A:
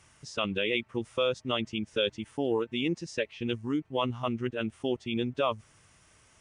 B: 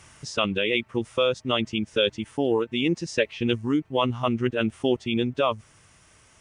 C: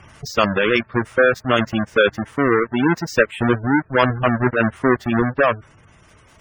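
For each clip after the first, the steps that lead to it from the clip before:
speech leveller within 4 dB 0.5 s; level +6 dB
each half-wave held at its own peak; dynamic equaliser 1,600 Hz, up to +8 dB, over −40 dBFS, Q 1.9; gate on every frequency bin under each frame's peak −20 dB strong; level +2.5 dB

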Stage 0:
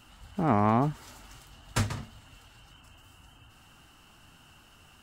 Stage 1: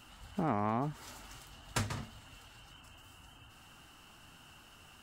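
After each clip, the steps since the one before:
low-shelf EQ 200 Hz −3.5 dB
downward compressor 2.5 to 1, threshold −32 dBFS, peak gain reduction 8.5 dB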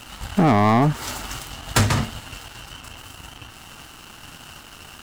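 leveller curve on the samples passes 3
level +9 dB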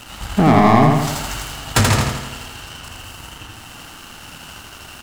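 repeating echo 82 ms, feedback 56%, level −3 dB
level +2.5 dB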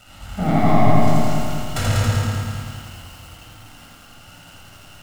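convolution reverb RT60 1.0 s, pre-delay 22 ms, DRR −1 dB
feedback echo at a low word length 193 ms, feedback 55%, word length 5 bits, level −3 dB
level −14 dB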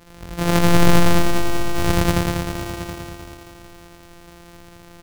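samples sorted by size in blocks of 256 samples
single-tap delay 723 ms −11.5 dB

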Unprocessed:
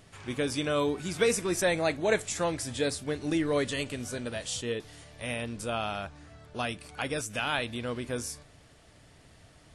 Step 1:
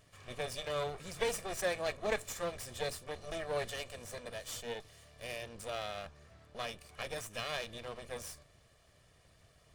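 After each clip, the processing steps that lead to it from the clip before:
lower of the sound and its delayed copy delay 1.7 ms
level −7 dB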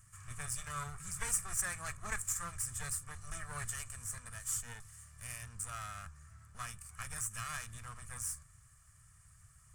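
drawn EQ curve 120 Hz 0 dB, 300 Hz −21 dB, 550 Hz −28 dB, 1,300 Hz −1 dB, 3,800 Hz −19 dB, 8,000 Hz +8 dB, 15,000 Hz −2 dB
level +5 dB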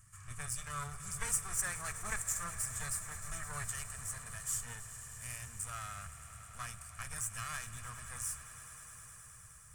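echo that builds up and dies away 104 ms, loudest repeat 5, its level −17 dB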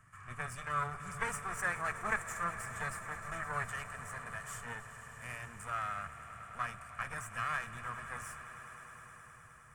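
three-way crossover with the lows and the highs turned down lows −15 dB, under 170 Hz, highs −21 dB, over 2,500 Hz
level +8.5 dB

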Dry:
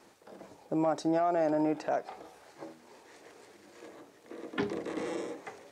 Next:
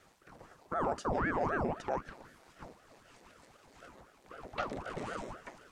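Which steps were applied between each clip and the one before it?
ring modulator whose carrier an LFO sweeps 540 Hz, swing 90%, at 3.9 Hz
level −1.5 dB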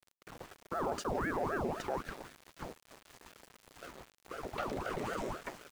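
parametric band 390 Hz +4 dB 0.63 octaves
in parallel at −0.5 dB: compressor whose output falls as the input rises −42 dBFS, ratio −1
on the sum: centre clipping without the shift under −43 dBFS
level −4.5 dB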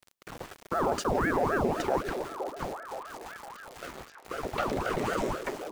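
echo through a band-pass that steps 516 ms, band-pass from 400 Hz, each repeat 0.7 octaves, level −6 dB
level +7.5 dB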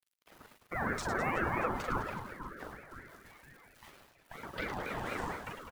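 spectral dynamics exaggerated over time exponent 1.5
reverse bouncing-ball delay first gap 40 ms, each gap 1.6×, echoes 5
ring modulator whose carrier an LFO sweeps 710 Hz, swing 35%, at 4.3 Hz
level −3 dB

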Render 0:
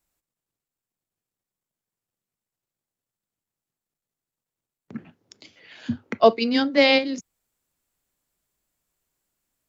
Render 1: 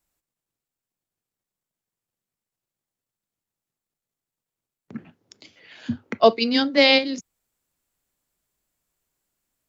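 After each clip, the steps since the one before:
dynamic equaliser 4,200 Hz, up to +5 dB, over −37 dBFS, Q 1.1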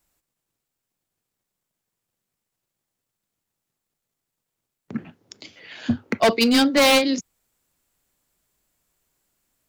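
hard clipping −19 dBFS, distortion −5 dB
level +6 dB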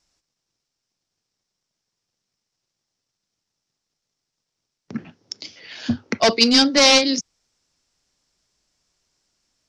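low-pass with resonance 5,500 Hz, resonance Q 4.5

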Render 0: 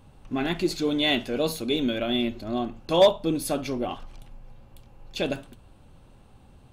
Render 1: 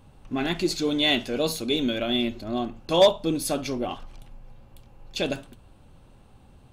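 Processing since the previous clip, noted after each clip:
dynamic equaliser 6,100 Hz, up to +5 dB, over −46 dBFS, Q 0.77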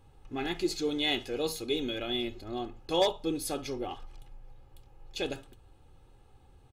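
comb filter 2.4 ms, depth 59%
level −7.5 dB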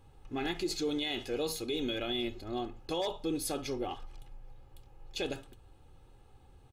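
brickwall limiter −24.5 dBFS, peak gain reduction 11 dB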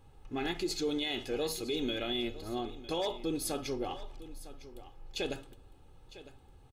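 single-tap delay 955 ms −16 dB
on a send at −19 dB: convolution reverb RT60 1.6 s, pre-delay 5 ms

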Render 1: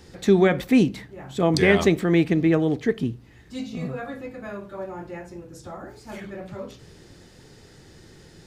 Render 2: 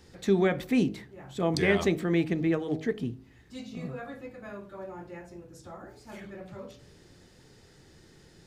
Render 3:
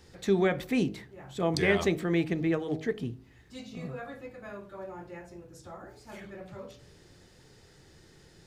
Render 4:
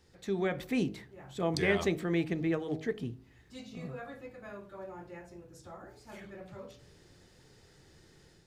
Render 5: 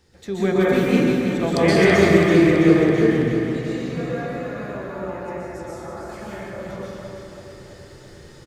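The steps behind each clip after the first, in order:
hum removal 52.76 Hz, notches 16; level −6.5 dB
parametric band 240 Hz −3.5 dB 0.84 octaves
automatic gain control gain up to 6 dB; level −9 dB
repeating echo 330 ms, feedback 59%, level −7.5 dB; dense smooth reverb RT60 2.2 s, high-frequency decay 0.5×, pre-delay 110 ms, DRR −8.5 dB; level +5 dB

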